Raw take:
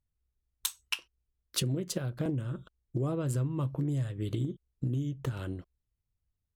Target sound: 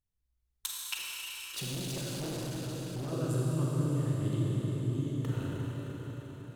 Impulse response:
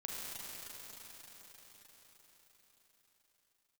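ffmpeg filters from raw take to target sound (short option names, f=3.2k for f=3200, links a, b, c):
-filter_complex "[1:a]atrim=start_sample=2205[a];[0:a][a]afir=irnorm=-1:irlink=0,asettb=1/sr,asplit=3[b][c][d];[b]atrim=end=0.964[e];[c]atrim=start=0.96:end=3.12,asetpts=PTS-STARTPTS,afade=t=in:d=0.004:c=qsin,afade=t=out:st=2.156:d=0.004:c=qsin,volume=34dB,asoftclip=hard,volume=-34dB[f];[d]atrim=start=3.116[g];[e][f]acrossfade=d=0.004:c1=hsin:c2=qsin[h];[h][g]acrossfade=d=0.004:c1=qsin:c2=hsin"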